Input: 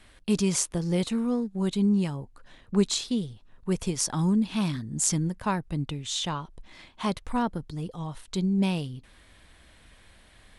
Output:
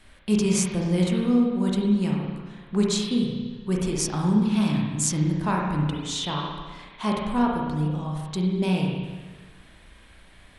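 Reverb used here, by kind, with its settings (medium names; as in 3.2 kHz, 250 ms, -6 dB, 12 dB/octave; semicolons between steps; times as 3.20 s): spring tank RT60 1.4 s, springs 33/53 ms, chirp 70 ms, DRR -2 dB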